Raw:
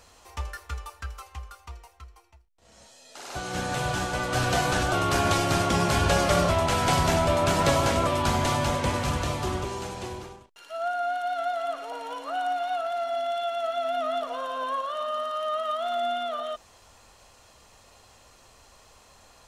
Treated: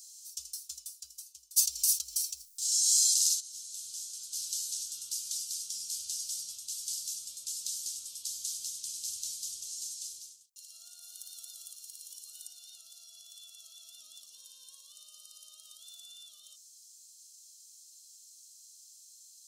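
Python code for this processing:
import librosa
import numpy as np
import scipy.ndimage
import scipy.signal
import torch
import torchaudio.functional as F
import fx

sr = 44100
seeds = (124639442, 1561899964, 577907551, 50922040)

y = fx.env_flatten(x, sr, amount_pct=100, at=(1.56, 3.39), fade=0.02)
y = fx.high_shelf(y, sr, hz=10000.0, db=10.0, at=(11.01, 12.48))
y = fx.rider(y, sr, range_db=10, speed_s=2.0)
y = scipy.signal.sosfilt(scipy.signal.cheby2(4, 50, 2100.0, 'highpass', fs=sr, output='sos'), y)
y = F.gain(torch.from_numpy(y), 1.0).numpy()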